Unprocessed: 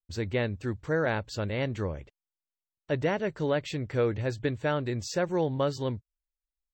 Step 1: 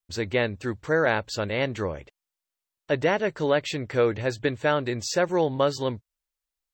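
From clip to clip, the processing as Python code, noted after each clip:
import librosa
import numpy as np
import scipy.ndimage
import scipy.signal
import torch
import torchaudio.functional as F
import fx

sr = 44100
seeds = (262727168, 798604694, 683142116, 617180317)

y = fx.low_shelf(x, sr, hz=240.0, db=-10.0)
y = y * librosa.db_to_amplitude(7.0)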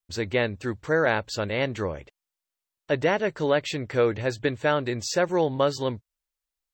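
y = x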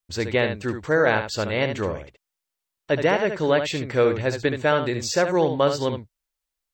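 y = x + 10.0 ** (-8.0 / 20.0) * np.pad(x, (int(72 * sr / 1000.0), 0))[:len(x)]
y = y * librosa.db_to_amplitude(2.5)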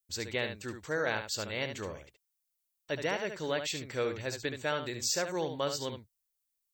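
y = F.preemphasis(torch.from_numpy(x), 0.8).numpy()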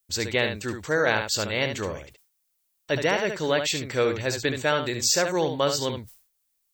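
y = fx.sustainer(x, sr, db_per_s=120.0)
y = y * librosa.db_to_amplitude(9.0)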